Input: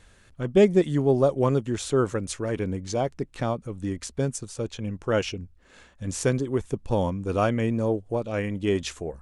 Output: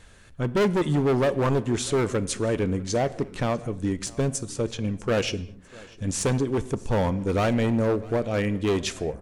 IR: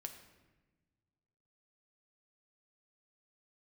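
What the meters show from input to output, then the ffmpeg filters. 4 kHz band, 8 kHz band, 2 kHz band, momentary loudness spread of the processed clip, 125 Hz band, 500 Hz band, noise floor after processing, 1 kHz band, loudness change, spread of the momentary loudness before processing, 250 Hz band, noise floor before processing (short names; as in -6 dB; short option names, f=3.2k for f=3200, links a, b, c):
+3.5 dB, +3.5 dB, +3.0 dB, 7 LU, +1.5 dB, -0.5 dB, -49 dBFS, +1.5 dB, +0.5 dB, 11 LU, +1.0 dB, -56 dBFS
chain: -filter_complex "[0:a]asoftclip=type=hard:threshold=-22.5dB,aecho=1:1:647|1294|1941:0.0708|0.0276|0.0108,asplit=2[a][b];[1:a]atrim=start_sample=2205,afade=t=out:st=0.29:d=0.01,atrim=end_sample=13230[c];[b][c]afir=irnorm=-1:irlink=0,volume=-0.5dB[d];[a][d]amix=inputs=2:normalize=0"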